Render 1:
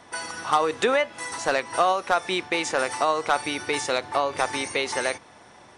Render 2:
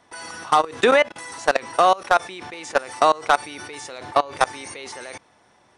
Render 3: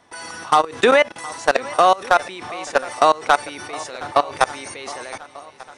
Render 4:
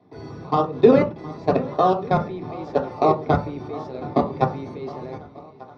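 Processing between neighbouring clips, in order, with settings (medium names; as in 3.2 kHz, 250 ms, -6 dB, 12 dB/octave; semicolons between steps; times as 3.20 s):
level held to a coarse grid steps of 22 dB; trim +8 dB
shuffle delay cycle 1191 ms, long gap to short 1.5:1, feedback 45%, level -19 dB; trim +2 dB
in parallel at -5.5 dB: decimation with a swept rate 25×, swing 60% 1 Hz; on the sum: tape spacing loss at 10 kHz 31 dB; reverberation RT60 0.30 s, pre-delay 3 ms, DRR 0 dB; trim -13 dB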